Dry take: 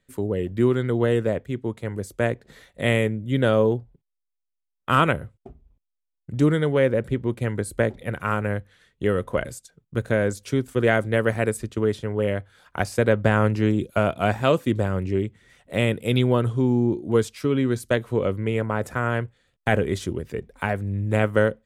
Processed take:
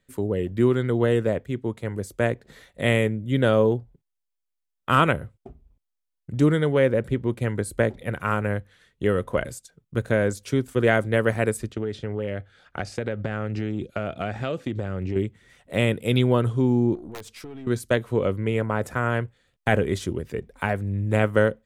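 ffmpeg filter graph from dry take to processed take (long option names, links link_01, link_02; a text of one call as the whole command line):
ffmpeg -i in.wav -filter_complex "[0:a]asettb=1/sr,asplit=3[link_01][link_02][link_03];[link_01]atrim=end=11.724[link_04];[link_02]atrim=start=11.72:end=15.16,asetpts=PTS-STARTPTS,afade=type=in:duration=0.004:curve=qsin,afade=type=out:start_time=3.436:duration=0.004:curve=qsin,lowpass=5700,equalizer=frequency=1000:width=7.4:gain=-14.5,acompressor=threshold=-23dB:ratio=6:attack=3.2:release=140:knee=1:detection=peak[link_05];[link_03]atrim=start=15.156[link_06];[link_04][link_05]acrossfade=duration=0.004:curve1=hsin:curve2=qsin[link_07];[link_07][link_06]acrossfade=duration=0.004:curve1=qsin:curve2=hsin,asettb=1/sr,asplit=3[link_08][link_09][link_10];[link_08]atrim=end=16.954[link_11];[link_09]atrim=start=16.95:end=17.67,asetpts=PTS-STARTPTS,afade=type=in:duration=0.004:curve=qsin,afade=type=out:start_time=0.716:duration=0.004:curve=qsin,aeval=exprs='(mod(3.35*val(0)+1,2)-1)/3.35':channel_layout=same,acompressor=threshold=-31dB:ratio=10:attack=3.2:release=140:knee=1:detection=peak,aeval=exprs='(tanh(35.5*val(0)+0.45)-tanh(0.45))/35.5':channel_layout=same[link_12];[link_10]atrim=start=17.666[link_13];[link_11][link_12]acrossfade=duration=0.004:curve1=hsin:curve2=qsin[link_14];[link_14][link_13]acrossfade=duration=0.004:curve1=qsin:curve2=hsin" out.wav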